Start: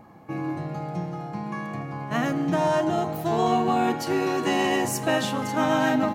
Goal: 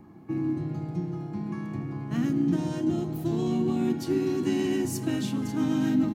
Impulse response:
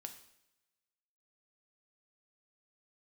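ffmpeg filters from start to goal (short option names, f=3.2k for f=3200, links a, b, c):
-filter_complex "[0:a]acrossover=split=320|3000[a][b][c];[b]acompressor=threshold=-39dB:ratio=2[d];[a][d][c]amix=inputs=3:normalize=0,asplit=2[e][f];[1:a]atrim=start_sample=2205[g];[f][g]afir=irnorm=-1:irlink=0,volume=-10.5dB[h];[e][h]amix=inputs=2:normalize=0,asplit=2[i][j];[j]asetrate=35002,aresample=44100,atempo=1.25992,volume=-9dB[k];[i][k]amix=inputs=2:normalize=0,lowshelf=f=430:t=q:w=3:g=6,volume=-8dB"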